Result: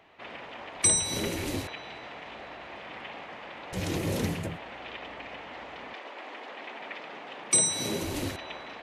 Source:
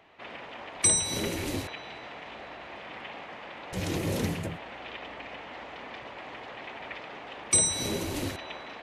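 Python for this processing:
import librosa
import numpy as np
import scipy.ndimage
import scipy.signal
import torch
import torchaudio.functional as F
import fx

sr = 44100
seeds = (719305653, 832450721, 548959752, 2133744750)

y = fx.highpass(x, sr, hz=fx.line((5.93, 300.0), (8.0, 100.0)), slope=24, at=(5.93, 8.0), fade=0.02)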